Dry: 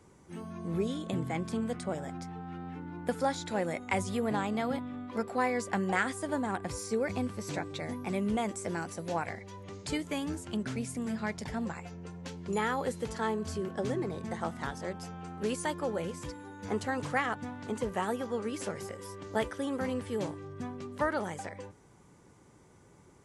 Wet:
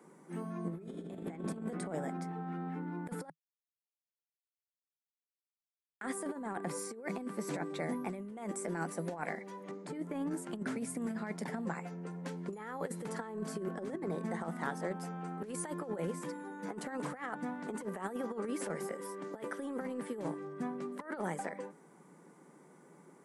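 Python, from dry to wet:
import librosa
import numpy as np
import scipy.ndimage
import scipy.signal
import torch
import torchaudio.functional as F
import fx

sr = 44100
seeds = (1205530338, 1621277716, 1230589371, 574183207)

y = fx.reverb_throw(x, sr, start_s=0.64, length_s=0.61, rt60_s=2.7, drr_db=-1.0)
y = fx.high_shelf(y, sr, hz=2200.0, db=-12.0, at=(9.71, 10.31))
y = fx.edit(y, sr, fx.silence(start_s=3.3, length_s=2.71), tone=tone)
y = scipy.signal.sosfilt(scipy.signal.ellip(4, 1.0, 40, 160.0, 'highpass', fs=sr, output='sos'), y)
y = fx.band_shelf(y, sr, hz=4200.0, db=-8.0, octaves=1.7)
y = fx.over_compress(y, sr, threshold_db=-36.0, ratio=-0.5)
y = F.gain(torch.from_numpy(y), -1.0).numpy()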